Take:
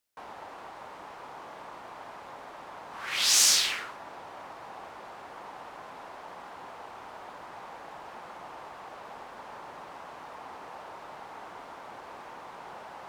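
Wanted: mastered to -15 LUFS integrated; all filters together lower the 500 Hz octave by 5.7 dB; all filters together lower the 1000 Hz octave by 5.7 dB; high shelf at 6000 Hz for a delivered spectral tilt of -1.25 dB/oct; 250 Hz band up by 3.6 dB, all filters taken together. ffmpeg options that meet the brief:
-af "equalizer=f=250:t=o:g=7.5,equalizer=f=500:t=o:g=-7.5,equalizer=f=1k:t=o:g=-5,highshelf=f=6k:g=-7,volume=11dB"

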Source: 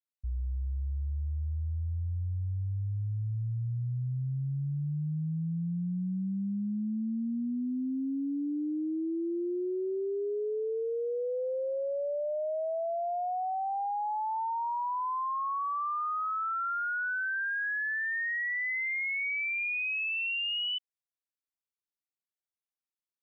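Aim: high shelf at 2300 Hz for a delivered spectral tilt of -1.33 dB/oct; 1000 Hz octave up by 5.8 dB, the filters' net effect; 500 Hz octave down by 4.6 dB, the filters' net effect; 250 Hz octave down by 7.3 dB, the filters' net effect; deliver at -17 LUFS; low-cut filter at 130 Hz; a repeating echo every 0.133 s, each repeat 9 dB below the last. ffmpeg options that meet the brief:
-af "highpass=130,equalizer=f=250:t=o:g=-8,equalizer=f=500:t=o:g=-7,equalizer=f=1k:t=o:g=8,highshelf=f=2.3k:g=7.5,aecho=1:1:133|266|399|532:0.355|0.124|0.0435|0.0152,volume=10.5dB"

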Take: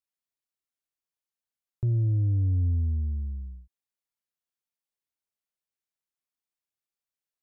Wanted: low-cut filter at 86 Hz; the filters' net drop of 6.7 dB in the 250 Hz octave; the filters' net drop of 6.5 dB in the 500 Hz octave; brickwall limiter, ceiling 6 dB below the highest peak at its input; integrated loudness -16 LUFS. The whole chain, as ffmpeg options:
-af "highpass=86,equalizer=f=250:t=o:g=-9,equalizer=f=500:t=o:g=-4,volume=20dB,alimiter=limit=-9dB:level=0:latency=1"

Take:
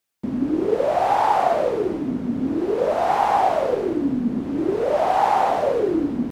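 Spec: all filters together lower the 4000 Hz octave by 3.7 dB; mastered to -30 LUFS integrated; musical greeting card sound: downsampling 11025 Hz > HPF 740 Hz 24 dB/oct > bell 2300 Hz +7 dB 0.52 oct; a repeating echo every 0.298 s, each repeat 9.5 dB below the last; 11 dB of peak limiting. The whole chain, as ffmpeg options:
-af "equalizer=f=4k:t=o:g=-7.5,alimiter=limit=-16.5dB:level=0:latency=1,aecho=1:1:298|596|894|1192:0.335|0.111|0.0365|0.012,aresample=11025,aresample=44100,highpass=f=740:w=0.5412,highpass=f=740:w=1.3066,equalizer=f=2.3k:t=o:w=0.52:g=7,volume=-1dB"

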